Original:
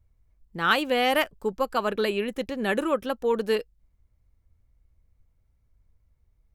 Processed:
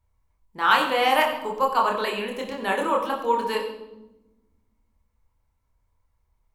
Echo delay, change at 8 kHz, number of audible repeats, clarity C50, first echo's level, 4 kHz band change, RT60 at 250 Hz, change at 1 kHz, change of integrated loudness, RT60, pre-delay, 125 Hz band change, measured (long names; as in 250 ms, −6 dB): no echo audible, +2.5 dB, no echo audible, 6.5 dB, no echo audible, +2.0 dB, 2.0 s, +7.0 dB, +2.5 dB, 1.1 s, 26 ms, can't be measured